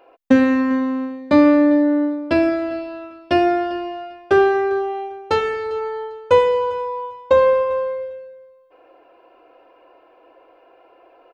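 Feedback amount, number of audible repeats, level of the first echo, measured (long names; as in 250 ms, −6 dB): 18%, 2, −19.5 dB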